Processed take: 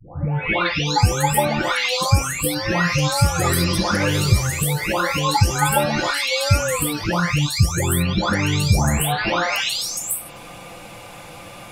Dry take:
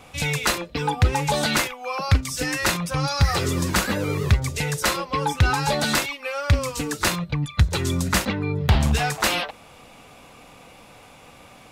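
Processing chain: delay that grows with frequency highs late, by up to 871 ms; in parallel at +2 dB: compression, threshold -37 dBFS, peak gain reduction 20.5 dB; on the sum: trim +4 dB

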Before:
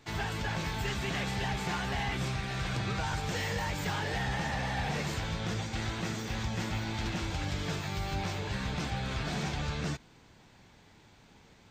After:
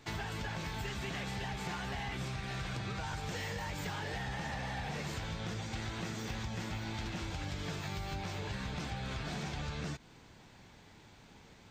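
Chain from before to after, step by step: compression, threshold -37 dBFS, peak gain reduction 8 dB; trim +1 dB

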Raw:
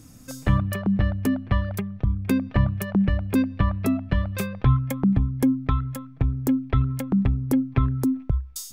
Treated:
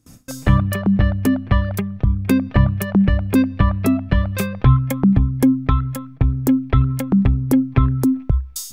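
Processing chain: gate with hold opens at -36 dBFS; trim +6 dB

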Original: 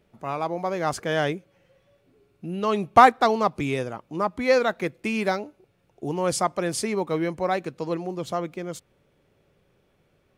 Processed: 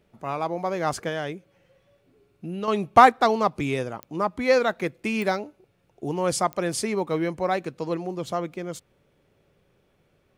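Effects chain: 1.08–2.68 s: compression 2.5:1, threshold -29 dBFS, peak gain reduction 7 dB; clicks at 4.03/5.22/6.53 s, -19 dBFS

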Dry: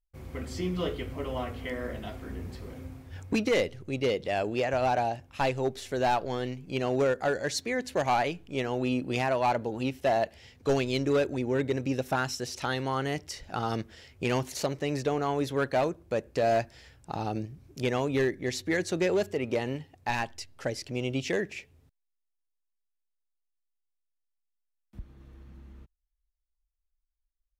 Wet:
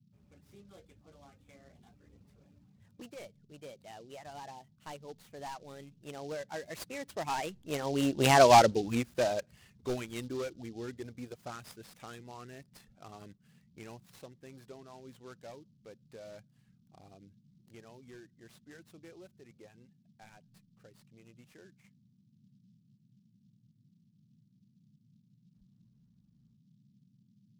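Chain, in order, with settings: Doppler pass-by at 8.47 s, 34 m/s, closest 6.5 m; reverb removal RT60 0.54 s; band noise 110–220 Hz -74 dBFS; delay time shaken by noise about 4.2 kHz, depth 0.037 ms; trim +8.5 dB

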